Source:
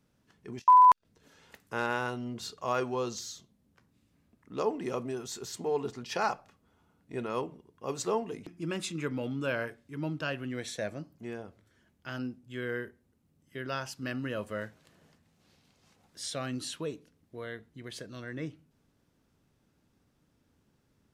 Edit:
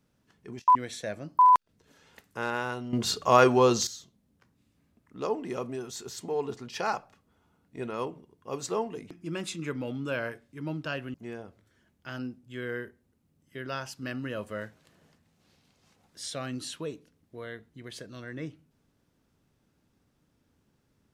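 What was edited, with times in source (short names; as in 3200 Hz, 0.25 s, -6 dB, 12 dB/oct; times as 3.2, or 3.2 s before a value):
2.29–3.23 gain +11.5 dB
10.5–11.14 move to 0.75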